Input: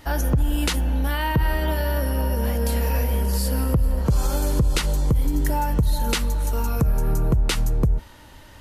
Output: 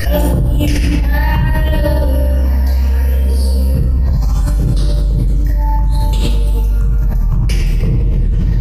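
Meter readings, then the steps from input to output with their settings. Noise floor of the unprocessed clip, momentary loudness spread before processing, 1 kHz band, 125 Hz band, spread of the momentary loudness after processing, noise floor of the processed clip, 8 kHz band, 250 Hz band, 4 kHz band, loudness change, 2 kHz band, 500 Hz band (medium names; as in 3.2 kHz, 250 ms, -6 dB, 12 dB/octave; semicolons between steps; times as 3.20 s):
-45 dBFS, 2 LU, +2.5 dB, +9.5 dB, 2 LU, -14 dBFS, -1.0 dB, +6.0 dB, +2.0 dB, +8.0 dB, +4.5 dB, +5.5 dB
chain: phase shifter stages 8, 0.67 Hz, lowest notch 380–2400 Hz; simulated room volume 3200 m³, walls mixed, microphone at 5.8 m; level flattener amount 100%; trim -13 dB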